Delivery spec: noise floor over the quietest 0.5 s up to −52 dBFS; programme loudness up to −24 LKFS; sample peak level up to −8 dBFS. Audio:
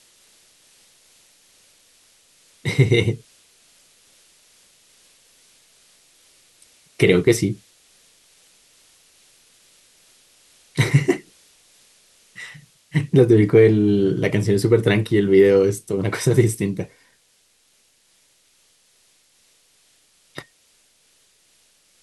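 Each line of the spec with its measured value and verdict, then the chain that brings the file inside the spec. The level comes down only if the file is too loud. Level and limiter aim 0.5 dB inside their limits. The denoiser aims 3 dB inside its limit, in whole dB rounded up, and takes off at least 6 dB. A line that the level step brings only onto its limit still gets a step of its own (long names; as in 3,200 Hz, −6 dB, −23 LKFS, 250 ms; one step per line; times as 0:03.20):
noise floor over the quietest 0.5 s −61 dBFS: in spec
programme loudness −18.0 LKFS: out of spec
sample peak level −3.0 dBFS: out of spec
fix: level −6.5 dB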